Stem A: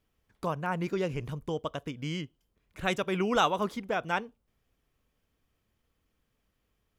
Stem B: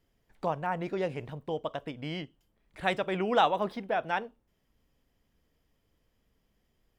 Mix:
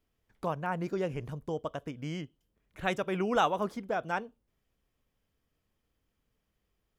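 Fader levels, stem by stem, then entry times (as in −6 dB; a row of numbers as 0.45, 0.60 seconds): −5.0, −10.0 decibels; 0.00, 0.00 seconds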